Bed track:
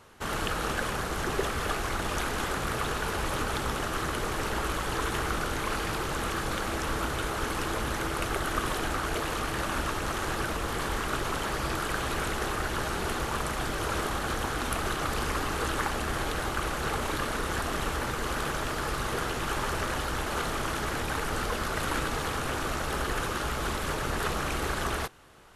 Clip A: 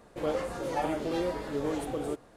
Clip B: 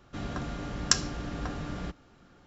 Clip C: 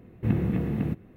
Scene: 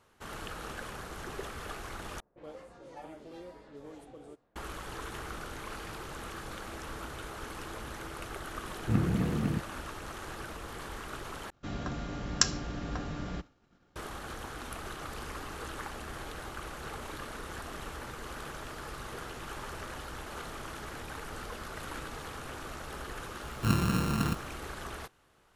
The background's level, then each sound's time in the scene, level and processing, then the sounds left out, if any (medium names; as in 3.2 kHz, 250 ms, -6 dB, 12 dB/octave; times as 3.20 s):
bed track -11 dB
2.20 s: replace with A -16.5 dB + level-controlled noise filter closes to 1.1 kHz, open at -28 dBFS
8.65 s: add C -3 dB + vibrato 1.8 Hz 42 cents
11.50 s: replace with B -1.5 dB + expander -52 dBFS
23.40 s: add C -2.5 dB + sorted samples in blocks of 32 samples